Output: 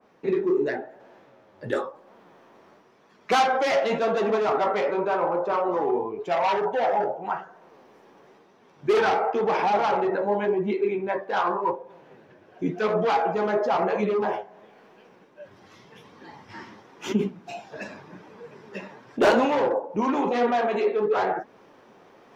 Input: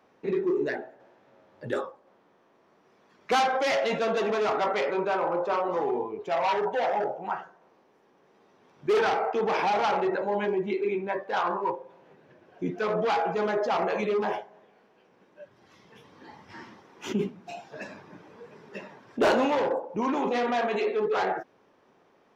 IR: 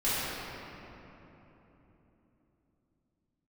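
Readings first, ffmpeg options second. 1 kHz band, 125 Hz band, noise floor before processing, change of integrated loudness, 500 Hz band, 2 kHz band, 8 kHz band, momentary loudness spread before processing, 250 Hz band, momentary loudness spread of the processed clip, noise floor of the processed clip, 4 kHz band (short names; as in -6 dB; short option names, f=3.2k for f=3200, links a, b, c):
+3.0 dB, +3.5 dB, -63 dBFS, +3.0 dB, +3.0 dB, +1.5 dB, n/a, 17 LU, +3.5 dB, 17 LU, -57 dBFS, +0.5 dB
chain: -af "areverse,acompressor=mode=upward:threshold=-48dB:ratio=2.5,areverse,flanger=delay=4:depth=7:regen=65:speed=0.93:shape=triangular,adynamicequalizer=threshold=0.00562:dfrequency=1700:dqfactor=0.7:tfrequency=1700:tqfactor=0.7:attack=5:release=100:ratio=0.375:range=3:mode=cutabove:tftype=highshelf,volume=7.5dB"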